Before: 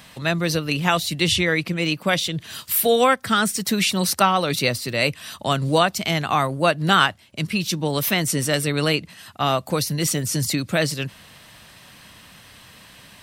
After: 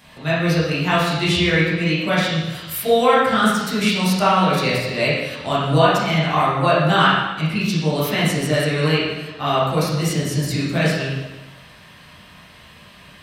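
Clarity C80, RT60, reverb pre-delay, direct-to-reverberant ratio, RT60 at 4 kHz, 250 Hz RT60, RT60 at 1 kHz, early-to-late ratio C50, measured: 2.5 dB, 1.1 s, 8 ms, -9.5 dB, 1.0 s, 1.1 s, 1.1 s, -0.5 dB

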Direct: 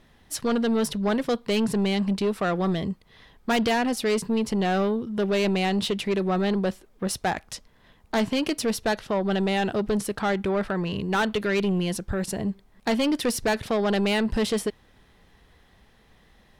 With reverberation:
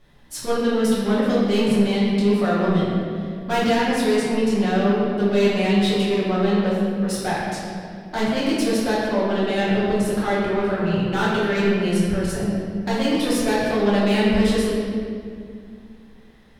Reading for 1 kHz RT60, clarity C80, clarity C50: 2.0 s, 0.5 dB, -1.5 dB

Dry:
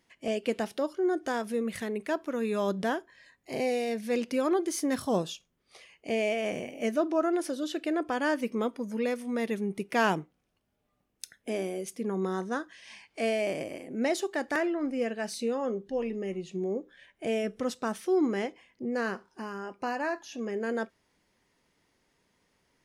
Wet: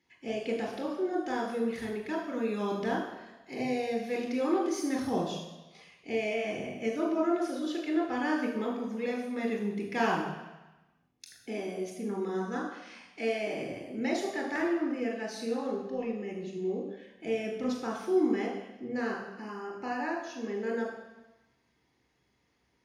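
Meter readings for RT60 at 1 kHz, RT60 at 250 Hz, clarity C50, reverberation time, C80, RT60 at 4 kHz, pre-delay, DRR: 1.1 s, 1.1 s, 4.5 dB, 1.1 s, 6.5 dB, 1.1 s, 24 ms, -0.5 dB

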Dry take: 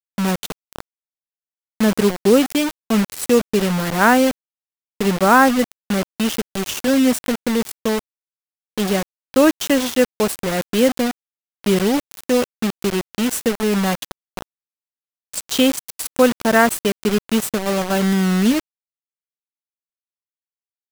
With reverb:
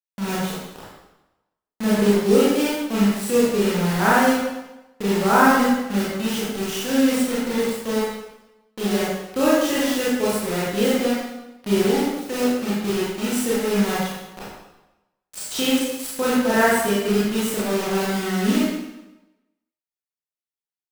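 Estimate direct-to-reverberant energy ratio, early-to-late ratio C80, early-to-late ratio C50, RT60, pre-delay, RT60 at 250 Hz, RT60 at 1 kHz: -8.5 dB, 1.5 dB, -2.0 dB, 1.0 s, 25 ms, 0.95 s, 1.0 s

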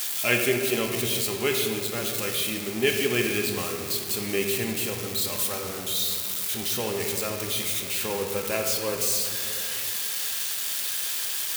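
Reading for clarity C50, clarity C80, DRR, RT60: 4.0 dB, 5.0 dB, 1.5 dB, 2.5 s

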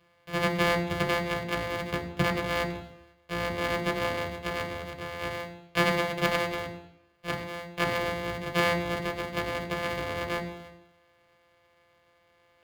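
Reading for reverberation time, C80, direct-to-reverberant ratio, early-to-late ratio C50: 0.85 s, 13.0 dB, 3.5 dB, 10.5 dB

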